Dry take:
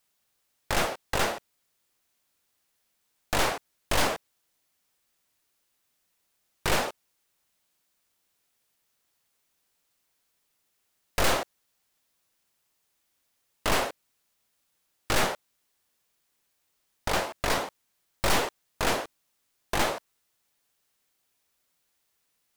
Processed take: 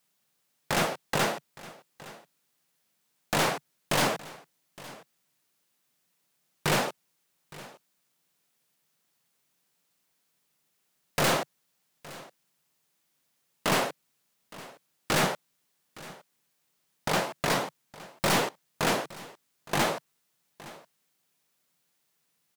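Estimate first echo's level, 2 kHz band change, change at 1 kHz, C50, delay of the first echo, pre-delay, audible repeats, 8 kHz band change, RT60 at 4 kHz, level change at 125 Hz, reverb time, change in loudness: -19.5 dB, 0.0 dB, 0.0 dB, no reverb, 865 ms, no reverb, 1, 0.0 dB, no reverb, +2.5 dB, no reverb, 0.0 dB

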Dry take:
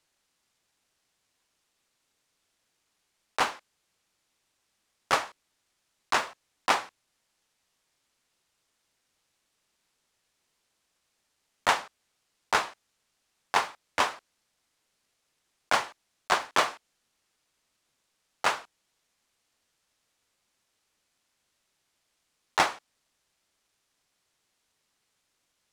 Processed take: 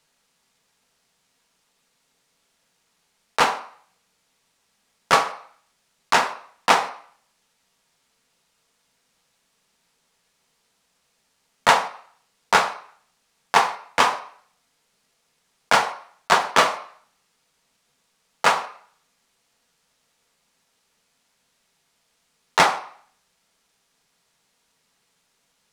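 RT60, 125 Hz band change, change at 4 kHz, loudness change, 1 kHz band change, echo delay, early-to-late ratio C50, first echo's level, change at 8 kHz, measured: 0.55 s, +10.5 dB, +7.5 dB, +7.5 dB, +9.0 dB, no echo, 12.0 dB, no echo, +7.0 dB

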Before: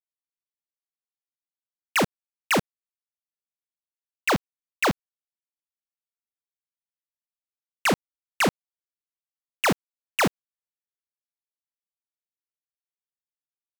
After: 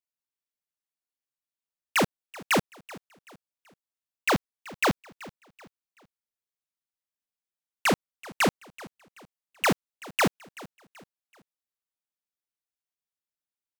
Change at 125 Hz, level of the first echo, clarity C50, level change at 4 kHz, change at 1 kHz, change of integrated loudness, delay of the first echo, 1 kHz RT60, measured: -1.5 dB, -20.0 dB, no reverb, -1.5 dB, -1.5 dB, -1.5 dB, 381 ms, no reverb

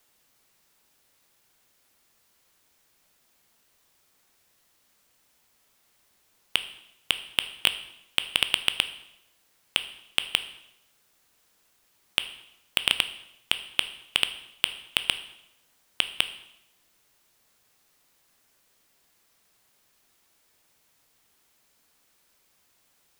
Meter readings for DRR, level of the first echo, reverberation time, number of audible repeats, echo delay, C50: 10.0 dB, no echo, 0.80 s, no echo, no echo, 13.0 dB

